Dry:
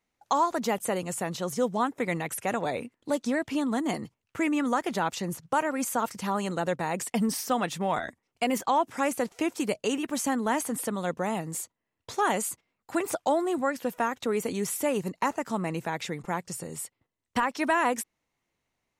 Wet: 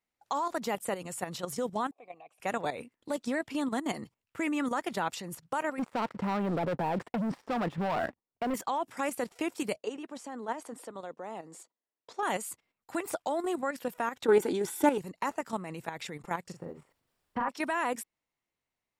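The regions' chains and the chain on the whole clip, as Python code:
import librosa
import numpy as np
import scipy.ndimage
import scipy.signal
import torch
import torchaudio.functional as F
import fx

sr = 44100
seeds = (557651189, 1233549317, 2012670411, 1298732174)

y = fx.chain(x, sr, fx.vowel_filter(vowel='a'),
    fx.peak_eq(hz=1400.0, db=-13.0, octaves=0.41), at=(1.91, 2.4))
y = fx.chain(y, sr, fx.lowpass(hz=1100.0, slope=12),
    fx.leveller(passes=3), at=(5.79, 8.54))
y = fx.chain(y, sr, fx.bandpass_edges(low_hz=340.0, high_hz=5000.0),
    fx.peak_eq(hz=2500.0, db=-9.0, octaves=2.4), at=(9.78, 12.23))
y = fx.chain(y, sr, fx.small_body(hz=(350.0, 840.0, 1500.0, 3500.0), ring_ms=25, db=15),
    fx.doppler_dist(depth_ms=0.11), at=(14.24, 14.98))
y = fx.lowpass(y, sr, hz=1300.0, slope=12, at=(16.51, 17.48), fade=0.02)
y = fx.dmg_noise_colour(y, sr, seeds[0], colour='pink', level_db=-75.0, at=(16.51, 17.48), fade=0.02)
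y = fx.doubler(y, sr, ms=41.0, db=-3, at=(16.51, 17.48), fade=0.02)
y = fx.low_shelf(y, sr, hz=410.0, db=-3.5)
y = fx.notch(y, sr, hz=6300.0, q=12.0)
y = fx.level_steps(y, sr, step_db=10)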